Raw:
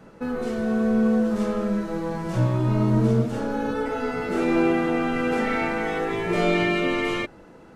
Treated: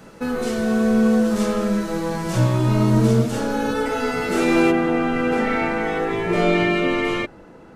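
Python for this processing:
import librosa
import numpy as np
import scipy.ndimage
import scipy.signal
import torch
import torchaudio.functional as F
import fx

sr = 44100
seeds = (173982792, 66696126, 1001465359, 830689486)

y = fx.high_shelf(x, sr, hz=3000.0, db=fx.steps((0.0, 11.0), (4.7, -3.0)))
y = y * 10.0 ** (3.5 / 20.0)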